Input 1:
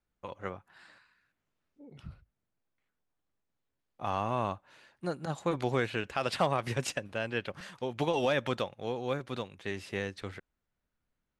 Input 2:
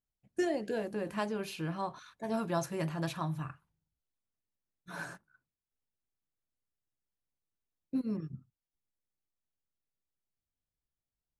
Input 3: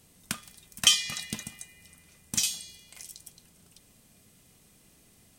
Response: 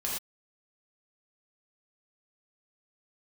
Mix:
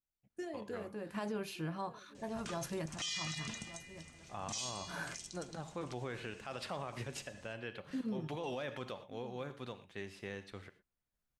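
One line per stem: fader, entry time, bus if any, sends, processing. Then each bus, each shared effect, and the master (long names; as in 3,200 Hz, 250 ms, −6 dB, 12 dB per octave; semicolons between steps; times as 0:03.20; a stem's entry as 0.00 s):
−10.0 dB, 0.30 s, send −14 dB, no echo send, no processing
0.0 dB, 0.00 s, no send, echo send −17.5 dB, sample-and-hold tremolo, depth 75%
+1.5 dB, 2.15 s, no send, no echo send, Chebyshev low-pass filter 6,900 Hz, order 3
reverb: on, pre-delay 3 ms
echo: single-tap delay 1,170 ms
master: brickwall limiter −30.5 dBFS, peak gain reduction 25 dB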